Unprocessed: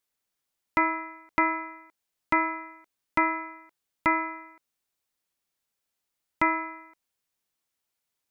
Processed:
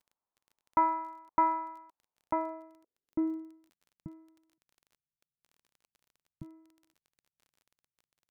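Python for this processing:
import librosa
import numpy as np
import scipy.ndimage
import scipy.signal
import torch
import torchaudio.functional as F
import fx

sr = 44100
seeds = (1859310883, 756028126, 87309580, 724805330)

y = fx.filter_sweep_lowpass(x, sr, from_hz=970.0, to_hz=150.0, start_s=2.09, end_s=4.16, q=3.3)
y = fx.dmg_crackle(y, sr, seeds[0], per_s=23.0, level_db=-42.0)
y = y * librosa.db_to_amplitude(-8.0)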